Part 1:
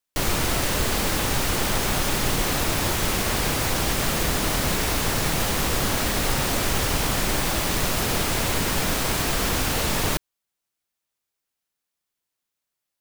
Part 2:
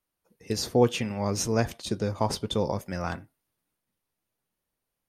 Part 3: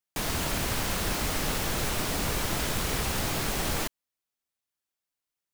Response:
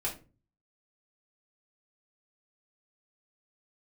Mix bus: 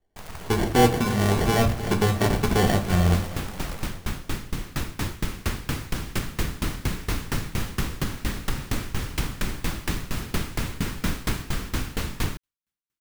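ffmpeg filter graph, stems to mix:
-filter_complex "[0:a]equalizer=frequency=640:width=0.94:gain=-12.5,dynaudnorm=framelen=560:gausssize=11:maxgain=11.5dB,aeval=exprs='val(0)*pow(10,-26*if(lt(mod(4.3*n/s,1),2*abs(4.3)/1000),1-mod(4.3*n/s,1)/(2*abs(4.3)/1000),(mod(4.3*n/s,1)-2*abs(4.3)/1000)/(1-2*abs(4.3)/1000))/20)':channel_layout=same,adelay=2200,volume=2dB[link_01];[1:a]lowshelf=frequency=170:gain=11,acrusher=samples=35:mix=1:aa=0.000001,asoftclip=type=hard:threshold=-18dB,volume=0dB,asplit=3[link_02][link_03][link_04];[link_03]volume=-3.5dB[link_05];[link_04]volume=-11dB[link_06];[2:a]equalizer=frequency=300:width_type=o:width=1:gain=-11.5,acrusher=bits=5:dc=4:mix=0:aa=0.000001,volume=-3.5dB[link_07];[link_01][link_07]amix=inputs=2:normalize=0,highshelf=frequency=2300:gain=-11.5,alimiter=limit=-14dB:level=0:latency=1:release=185,volume=0dB[link_08];[3:a]atrim=start_sample=2205[link_09];[link_05][link_09]afir=irnorm=-1:irlink=0[link_10];[link_06]aecho=0:1:309|618|927|1236|1545|1854|2163|2472:1|0.55|0.303|0.166|0.0915|0.0503|0.0277|0.0152[link_11];[link_02][link_08][link_10][link_11]amix=inputs=4:normalize=0"

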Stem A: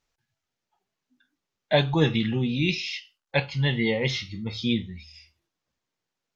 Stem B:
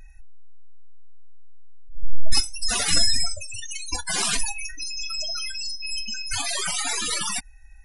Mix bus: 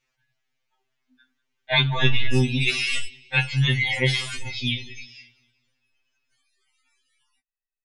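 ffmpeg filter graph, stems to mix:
ffmpeg -i stem1.wav -i stem2.wav -filter_complex "[0:a]volume=1dB,asplit=3[link_01][link_02][link_03];[link_02]volume=-21.5dB[link_04];[1:a]volume=-13dB[link_05];[link_03]apad=whole_len=345832[link_06];[link_05][link_06]sidechaingate=range=-33dB:threshold=-41dB:ratio=16:detection=peak[link_07];[link_04]aecho=0:1:191|382|573|764|955|1146:1|0.41|0.168|0.0689|0.0283|0.0116[link_08];[link_01][link_07][link_08]amix=inputs=3:normalize=0,equalizer=frequency=2300:width_type=o:width=1.5:gain=9.5,afftfilt=real='re*2.45*eq(mod(b,6),0)':imag='im*2.45*eq(mod(b,6),0)':win_size=2048:overlap=0.75" out.wav

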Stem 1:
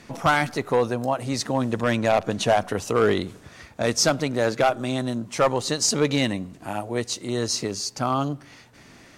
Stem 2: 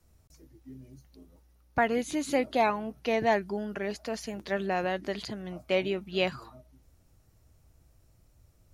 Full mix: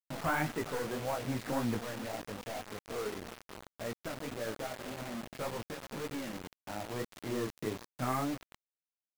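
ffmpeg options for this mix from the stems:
ffmpeg -i stem1.wav -i stem2.wav -filter_complex "[0:a]agate=range=-18dB:threshold=-37dB:ratio=16:detection=peak,asoftclip=type=tanh:threshold=-20.5dB,volume=-3dB,asplit=2[link_01][link_02];[link_02]volume=-18.5dB[link_03];[1:a]aecho=1:1:3.7:0.72,acompressor=threshold=-35dB:ratio=3,bandpass=frequency=340:width_type=q:width=0.53:csg=0,volume=-11.5dB,asplit=2[link_04][link_05];[link_05]apad=whole_len=404655[link_06];[link_01][link_06]sidechaincompress=threshold=-55dB:ratio=5:attack=34:release=1050[link_07];[link_03]aecho=0:1:396:1[link_08];[link_07][link_04][link_08]amix=inputs=3:normalize=0,lowpass=frequency=2400:width=0.5412,lowpass=frequency=2400:width=1.3066,flanger=delay=17:depth=6.9:speed=1.8,acrusher=bits=6:mix=0:aa=0.000001" out.wav

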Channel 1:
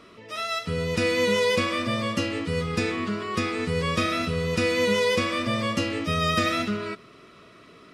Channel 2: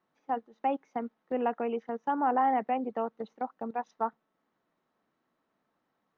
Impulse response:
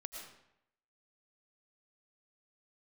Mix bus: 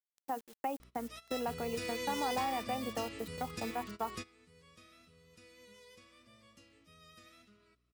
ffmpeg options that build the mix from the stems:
-filter_complex "[0:a]aeval=exprs='val(0)+0.01*(sin(2*PI*60*n/s)+sin(2*PI*2*60*n/s)/2+sin(2*PI*3*60*n/s)/3+sin(2*PI*4*60*n/s)/4+sin(2*PI*5*60*n/s)/5)':channel_layout=same,adelay=800,volume=-18.5dB[link_01];[1:a]acompressor=threshold=-36dB:ratio=2.5,acrusher=bits=9:mix=0:aa=0.000001,volume=-1dB,asplit=2[link_02][link_03];[link_03]apad=whole_len=385090[link_04];[link_01][link_04]sidechaingate=range=-19dB:threshold=-56dB:ratio=16:detection=peak[link_05];[link_05][link_02]amix=inputs=2:normalize=0,crystalizer=i=2.5:c=0"

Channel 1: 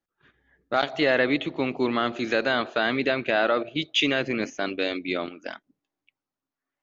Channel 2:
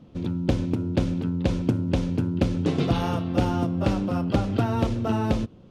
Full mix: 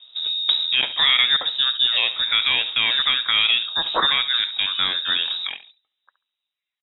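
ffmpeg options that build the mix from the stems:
ffmpeg -i stem1.wav -i stem2.wav -filter_complex "[0:a]equalizer=frequency=86:width_type=o:width=1.1:gain=15,dynaudnorm=framelen=230:gausssize=5:maxgain=10dB,volume=-4dB,asplit=3[link_01][link_02][link_03];[link_02]volume=-14.5dB[link_04];[1:a]volume=2.5dB[link_05];[link_03]apad=whole_len=251486[link_06];[link_05][link_06]sidechaincompress=threshold=-27dB:ratio=5:attack=16:release=534[link_07];[link_04]aecho=0:1:69|138|207:1|0.17|0.0289[link_08];[link_01][link_07][link_08]amix=inputs=3:normalize=0,lowpass=frequency=3300:width_type=q:width=0.5098,lowpass=frequency=3300:width_type=q:width=0.6013,lowpass=frequency=3300:width_type=q:width=0.9,lowpass=frequency=3300:width_type=q:width=2.563,afreqshift=-3900" out.wav

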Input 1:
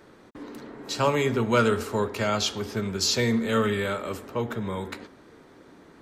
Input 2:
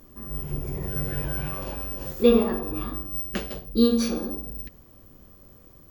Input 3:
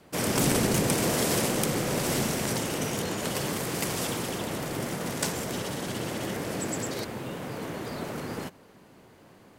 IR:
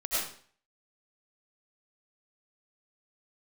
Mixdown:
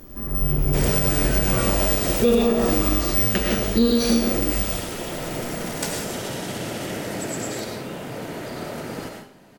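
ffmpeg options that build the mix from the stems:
-filter_complex "[0:a]equalizer=frequency=76:width_type=o:width=2.7:gain=14.5,volume=-12dB,asplit=2[link_01][link_02];[1:a]acontrast=27,volume=-1.5dB,asplit=2[link_03][link_04];[link_04]volume=-3.5dB[link_05];[2:a]adelay=600,volume=-1.5dB,asplit=2[link_06][link_07];[link_07]volume=-6dB[link_08];[link_02]apad=whole_len=449200[link_09];[link_06][link_09]sidechaincompress=threshold=-43dB:ratio=8:attack=16:release=467[link_10];[3:a]atrim=start_sample=2205[link_11];[link_05][link_08]amix=inputs=2:normalize=0[link_12];[link_12][link_11]afir=irnorm=-1:irlink=0[link_13];[link_01][link_03][link_10][link_13]amix=inputs=4:normalize=0,bandreject=frequency=1100:width=11,alimiter=limit=-9.5dB:level=0:latency=1:release=160"

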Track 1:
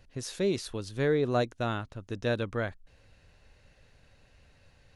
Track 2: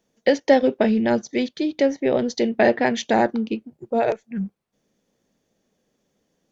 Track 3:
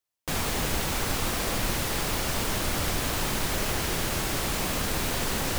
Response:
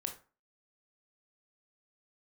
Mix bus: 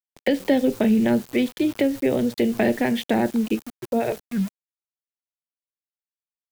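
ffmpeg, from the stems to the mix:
-filter_complex "[0:a]aemphasis=mode=reproduction:type=bsi,acompressor=threshold=-26dB:ratio=2.5,volume=-15dB[link_01];[1:a]lowpass=frequency=3200:width=0.5412,lowpass=frequency=3200:width=1.3066,volume=1.5dB,asplit=3[link_02][link_03][link_04];[link_03]volume=-11.5dB[link_05];[2:a]highpass=frequency=610:width=0.5412,highpass=frequency=610:width=1.3066,equalizer=frequency=15000:width=2.7:gain=6.5,asoftclip=type=tanh:threshold=-30.5dB,adelay=50,volume=-19.5dB,asplit=2[link_06][link_07];[link_07]volume=-16dB[link_08];[link_04]apad=whole_len=248621[link_09];[link_06][link_09]sidechaingate=range=-33dB:threshold=-38dB:ratio=16:detection=peak[link_10];[3:a]atrim=start_sample=2205[link_11];[link_05][link_08]amix=inputs=2:normalize=0[link_12];[link_12][link_11]afir=irnorm=-1:irlink=0[link_13];[link_01][link_02][link_10][link_13]amix=inputs=4:normalize=0,aeval=exprs='val(0)*gte(abs(val(0)),0.0168)':channel_layout=same,acrossover=split=340|3000[link_14][link_15][link_16];[link_15]acompressor=threshold=-26dB:ratio=4[link_17];[link_14][link_17][link_16]amix=inputs=3:normalize=0,highshelf=frequency=4000:gain=5.5"

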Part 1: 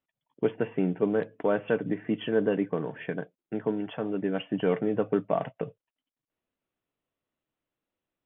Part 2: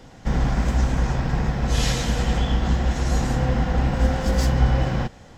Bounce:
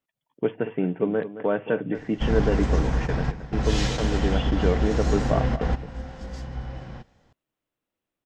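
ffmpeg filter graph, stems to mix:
ffmpeg -i stem1.wav -i stem2.wav -filter_complex "[0:a]volume=1.5dB,asplit=3[link_01][link_02][link_03];[link_02]volume=-13dB[link_04];[1:a]lowpass=6400,adelay=1950,volume=-2.5dB[link_05];[link_03]apad=whole_len=323123[link_06];[link_05][link_06]sidechaingate=range=-13dB:threshold=-40dB:ratio=16:detection=peak[link_07];[link_04]aecho=0:1:221:1[link_08];[link_01][link_07][link_08]amix=inputs=3:normalize=0" out.wav

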